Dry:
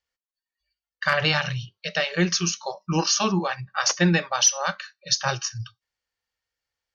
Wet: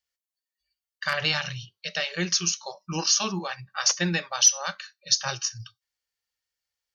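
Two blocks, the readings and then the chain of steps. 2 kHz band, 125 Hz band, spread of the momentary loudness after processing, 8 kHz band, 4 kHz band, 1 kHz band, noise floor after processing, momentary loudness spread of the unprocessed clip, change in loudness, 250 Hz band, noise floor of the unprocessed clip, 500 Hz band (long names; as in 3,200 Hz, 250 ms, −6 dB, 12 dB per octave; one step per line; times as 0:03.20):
−4.0 dB, −7.5 dB, 14 LU, can't be measured, −0.5 dB, −6.0 dB, below −85 dBFS, 12 LU, −1.5 dB, −7.5 dB, below −85 dBFS, −7.0 dB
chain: high-shelf EQ 2,800 Hz +10.5 dB
level −7.5 dB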